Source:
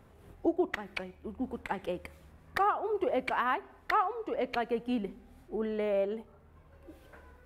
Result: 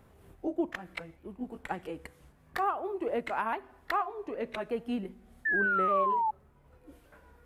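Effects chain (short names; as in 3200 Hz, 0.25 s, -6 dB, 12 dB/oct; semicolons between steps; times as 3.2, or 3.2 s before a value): repeated pitch sweeps -2 st, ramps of 1.176 s; painted sound fall, 5.45–6.31, 850–1800 Hz -27 dBFS; high shelf 8400 Hz +5 dB; gain -1 dB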